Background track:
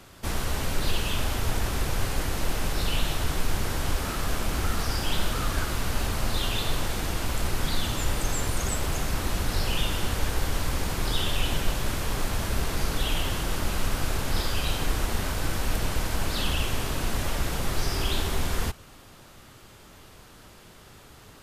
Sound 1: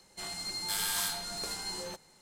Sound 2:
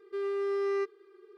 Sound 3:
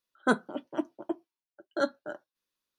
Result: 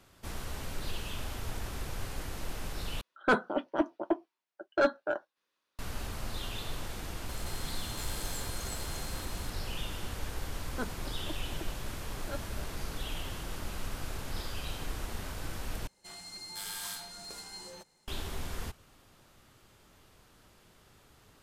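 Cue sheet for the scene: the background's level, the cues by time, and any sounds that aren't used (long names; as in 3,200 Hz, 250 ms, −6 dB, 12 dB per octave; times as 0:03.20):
background track −11 dB
0:03.01: overwrite with 3 −3 dB + mid-hump overdrive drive 21 dB, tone 1,500 Hz, clips at −10.5 dBFS
0:07.29: mix in 1 −14.5 dB + compressor on every frequency bin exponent 0.2
0:10.51: mix in 3 −13.5 dB
0:15.87: overwrite with 1 −7.5 dB
not used: 2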